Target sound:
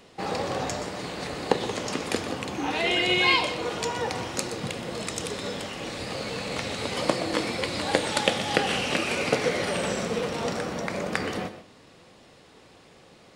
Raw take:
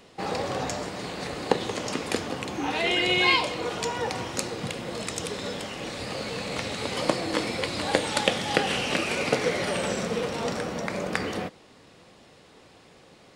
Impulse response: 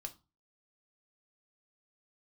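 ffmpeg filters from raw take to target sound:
-filter_complex "[0:a]asplit=2[a][b];[1:a]atrim=start_sample=2205,adelay=122[c];[b][c]afir=irnorm=-1:irlink=0,volume=-8.5dB[d];[a][d]amix=inputs=2:normalize=0"

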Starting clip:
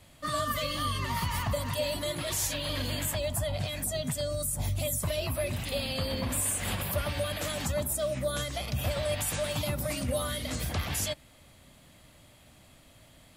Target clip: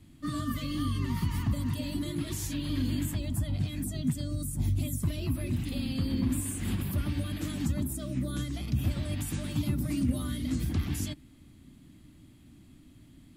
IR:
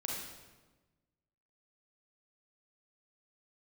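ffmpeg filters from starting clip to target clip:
-af "lowshelf=f=410:t=q:w=3:g=10.5,volume=-8dB"

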